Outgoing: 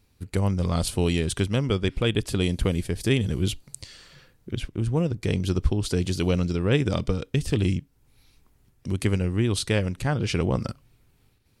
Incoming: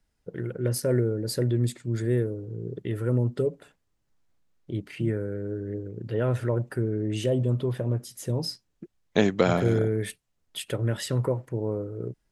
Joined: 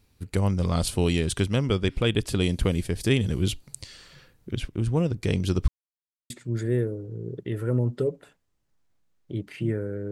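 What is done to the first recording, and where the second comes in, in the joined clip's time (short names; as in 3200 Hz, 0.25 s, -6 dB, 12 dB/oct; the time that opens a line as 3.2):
outgoing
5.68–6.3 mute
6.3 switch to incoming from 1.69 s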